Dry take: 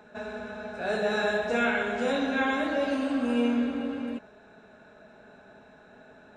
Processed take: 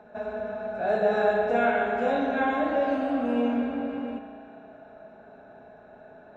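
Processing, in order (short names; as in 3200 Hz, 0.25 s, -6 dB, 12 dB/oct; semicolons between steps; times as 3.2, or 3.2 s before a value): LPF 1500 Hz 6 dB/oct; bell 690 Hz +8.5 dB 0.48 oct; spring tank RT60 2.6 s, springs 35 ms, chirp 30 ms, DRR 6 dB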